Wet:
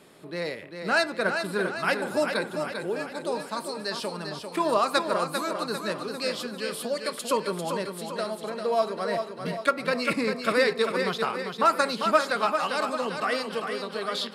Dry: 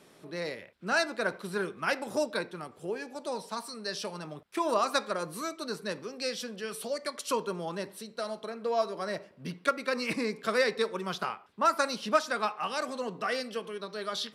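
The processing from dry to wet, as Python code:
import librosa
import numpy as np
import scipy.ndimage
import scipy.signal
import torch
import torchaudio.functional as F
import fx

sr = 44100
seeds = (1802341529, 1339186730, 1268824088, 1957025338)

y = fx.notch(x, sr, hz=5800.0, q=5.7)
y = fx.echo_feedback(y, sr, ms=396, feedback_pct=51, wet_db=-6.5)
y = y * 10.0 ** (4.0 / 20.0)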